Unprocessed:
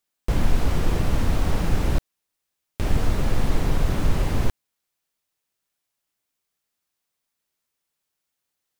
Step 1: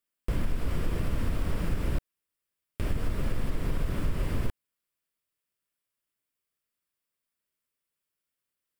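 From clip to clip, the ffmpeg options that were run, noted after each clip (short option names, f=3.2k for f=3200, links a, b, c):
-af "equalizer=f=800:t=o:w=0.33:g=-9,equalizer=f=4k:t=o:w=0.33:g=-5,equalizer=f=6.3k:t=o:w=0.33:g=-8,acompressor=threshold=-17dB:ratio=6,volume=-5dB"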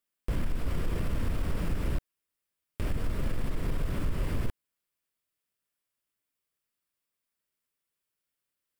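-af "asoftclip=type=tanh:threshold=-19dB"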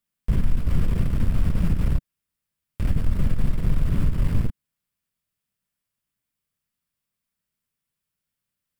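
-af "lowshelf=f=250:t=q:w=1.5:g=8,aeval=exprs='0.266*(cos(1*acos(clip(val(0)/0.266,-1,1)))-cos(1*PI/2))+0.0211*(cos(3*acos(clip(val(0)/0.266,-1,1)))-cos(3*PI/2))+0.0266*(cos(4*acos(clip(val(0)/0.266,-1,1)))-cos(4*PI/2))+0.0119*(cos(5*acos(clip(val(0)/0.266,-1,1)))-cos(5*PI/2))':c=same,volume=1.5dB"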